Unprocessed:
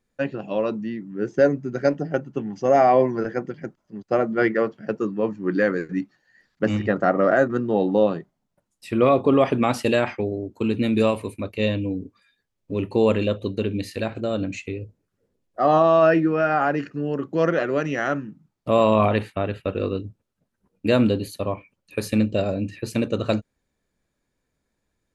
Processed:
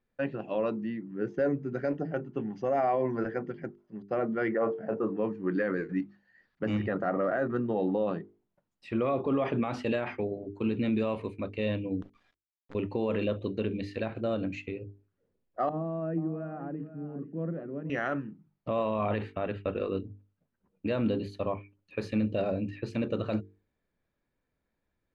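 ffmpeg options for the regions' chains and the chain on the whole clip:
ffmpeg -i in.wav -filter_complex "[0:a]asettb=1/sr,asplit=3[link_01][link_02][link_03];[link_01]atrim=end=4.544[link_04];[link_02]atrim=start=4.54:end=5.17,asetpts=PTS-STARTPTS,afade=type=in:duration=0.004:curve=qsin,afade=type=out:start_time=0.626:duration=0.004:curve=qsin,lowpass=frequency=1900:poles=1,equalizer=frequency=710:width_type=o:width=1.2:gain=12.5,asplit=2[link_05][link_06];[link_06]adelay=27,volume=-11dB[link_07];[link_05][link_07]amix=inputs=2:normalize=0,atrim=end_sample=27783[link_08];[link_03]atrim=start=5.166[link_09];[link_04][link_08]acrossfade=duration=0.004:curve1=hsin:curve2=qsin[link_10];[link_10][link_09]acrossfade=duration=0.004:curve1=qsin:curve2=hsin,asettb=1/sr,asplit=3[link_11][link_12][link_13];[link_11]atrim=end=12.024[link_14];[link_12]atrim=start=12.02:end=12.75,asetpts=PTS-STARTPTS,afade=type=in:duration=0.004:curve=qsin,afade=type=out:start_time=0.726:duration=0.004:curve=qsin,equalizer=frequency=1100:width=2:gain=8,acompressor=threshold=-41dB:ratio=4:attack=3.2:release=140:knee=1:detection=peak,acrusher=bits=7:dc=4:mix=0:aa=0.000001[link_15];[link_13]atrim=start=12.746[link_16];[link_14][link_15]acrossfade=duration=0.004:curve1=hsin:curve2=qsin[link_17];[link_17][link_16]acrossfade=duration=0.004:curve1=qsin:curve2=hsin,asettb=1/sr,asplit=3[link_18][link_19][link_20];[link_18]atrim=end=15.694[link_21];[link_19]atrim=start=15.69:end=17.9,asetpts=PTS-STARTPTS,afade=type=in:duration=0.004:curve=qsin,afade=type=out:start_time=2.206:duration=0.004:curve=qsin,bandpass=frequency=190:width_type=q:width=1.9,aecho=1:1:482:0.224,atrim=end_sample=97461[link_22];[link_20]atrim=start=17.896[link_23];[link_21][link_22]acrossfade=duration=0.004:curve1=hsin:curve2=qsin[link_24];[link_24][link_23]acrossfade=duration=0.004:curve1=qsin:curve2=hsin,lowpass=3100,bandreject=frequency=50:width_type=h:width=6,bandreject=frequency=100:width_type=h:width=6,bandreject=frequency=150:width_type=h:width=6,bandreject=frequency=200:width_type=h:width=6,bandreject=frequency=250:width_type=h:width=6,bandreject=frequency=300:width_type=h:width=6,bandreject=frequency=350:width_type=h:width=6,bandreject=frequency=400:width_type=h:width=6,bandreject=frequency=450:width_type=h:width=6,alimiter=limit=-15.5dB:level=0:latency=1:release=27,volume=-4.5dB" out.wav

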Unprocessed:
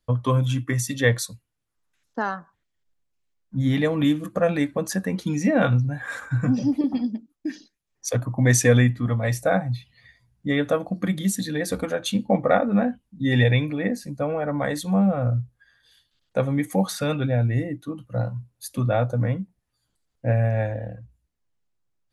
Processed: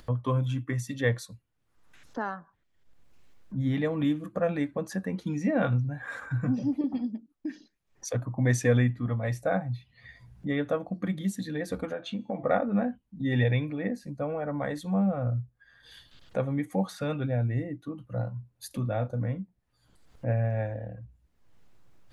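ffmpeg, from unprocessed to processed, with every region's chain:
ffmpeg -i in.wav -filter_complex "[0:a]asettb=1/sr,asplit=3[link_01][link_02][link_03];[link_01]atrim=end=11.934[link_04];[link_02]atrim=start=11.93:end=12.43,asetpts=PTS-STARTPTS,afade=type=in:duration=0.004:curve=qsin,afade=type=out:start_time=0.496:duration=0.004:curve=qsin,highpass=160,lowpass=4000,bandreject=frequency=336.6:width_type=h:width=4,bandreject=frequency=673.2:width_type=h:width=4,bandreject=frequency=1009.8:width_type=h:width=4,bandreject=frequency=1346.4:width_type=h:width=4,bandreject=frequency=1683:width_type=h:width=4,bandreject=frequency=2019.6:width_type=h:width=4,bandreject=frequency=2356.2:width_type=h:width=4,bandreject=frequency=2692.8:width_type=h:width=4,bandreject=frequency=3029.4:width_type=h:width=4,bandreject=frequency=3366:width_type=h:width=4,bandreject=frequency=3702.6:width_type=h:width=4,bandreject=frequency=4039.2:width_type=h:width=4,bandreject=frequency=4375.8:width_type=h:width=4,bandreject=frequency=4712.4:width_type=h:width=4,bandreject=frequency=5049:width_type=h:width=4,bandreject=frequency=5385.6:width_type=h:width=4,bandreject=frequency=5722.2:width_type=h:width=4,bandreject=frequency=6058.8:width_type=h:width=4,bandreject=frequency=6395.4:width_type=h:width=4,bandreject=frequency=6732:width_type=h:width=4,bandreject=frequency=7068.6:width_type=h:width=4,bandreject=frequency=7405.2:width_type=h:width=4,bandreject=frequency=7741.8:width_type=h:width=4,bandreject=frequency=8078.4:width_type=h:width=4,bandreject=frequency=8415:width_type=h:width=4,bandreject=frequency=8751.6:width_type=h:width=4,bandreject=frequency=9088.2:width_type=h:width=4,bandreject=frequency=9424.8:width_type=h:width=4,bandreject=frequency=9761.4:width_type=h:width=4,bandreject=frequency=10098:width_type=h:width=4,bandreject=frequency=10434.6:width_type=h:width=4,bandreject=frequency=10771.2:width_type=h:width=4,bandreject=frequency=11107.8:width_type=h:width=4,bandreject=frequency=11444.4:width_type=h:width=4,bandreject=frequency=11781:width_type=h:width=4,acompressor=threshold=-23dB:ratio=3:attack=3.2:release=140:knee=1:detection=peak[link_05];[link_03]atrim=start=12.426[link_06];[link_04][link_05]acrossfade=duration=0.004:curve1=hsin:curve2=qsin[link_07];[link_07][link_06]acrossfade=duration=0.004:curve1=qsin:curve2=hsin,asettb=1/sr,asplit=3[link_08][link_09][link_10];[link_08]atrim=end=18.674[link_11];[link_09]atrim=start=18.67:end=19.39,asetpts=PTS-STARTPTS,afade=type=in:duration=0.004:curve=qsin,afade=type=out:start_time=0.716:duration=0.004:curve=qsin,equalizer=frequency=980:width_type=o:width=2.8:gain=-3,asplit=2[link_12][link_13];[link_13]adelay=37,volume=-12dB[link_14];[link_12][link_14]amix=inputs=2:normalize=0,atrim=end_sample=31752[link_15];[link_10]atrim=start=19.386[link_16];[link_11][link_15]acrossfade=duration=0.004:curve1=hsin:curve2=qsin[link_17];[link_17][link_16]acrossfade=duration=0.004:curve1=qsin:curve2=hsin,highshelf=frequency=3800:gain=-10.5,acompressor=mode=upward:threshold=-26dB:ratio=2.5,volume=-6dB" out.wav

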